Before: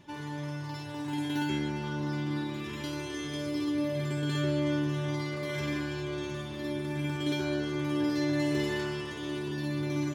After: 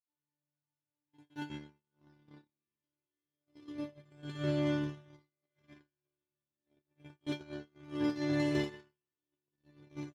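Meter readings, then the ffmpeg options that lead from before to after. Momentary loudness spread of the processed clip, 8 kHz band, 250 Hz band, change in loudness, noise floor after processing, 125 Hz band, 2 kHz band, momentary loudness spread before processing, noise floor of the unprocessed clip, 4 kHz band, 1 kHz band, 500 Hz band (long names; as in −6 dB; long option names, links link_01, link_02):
19 LU, below −10 dB, −8.0 dB, −4.5 dB, below −85 dBFS, −10.0 dB, −10.5 dB, 8 LU, −39 dBFS, −11.5 dB, −11.5 dB, −8.0 dB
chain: -af "agate=range=-60dB:threshold=-27dB:ratio=16:detection=peak,highshelf=frequency=9800:gain=-11.5,volume=1.5dB"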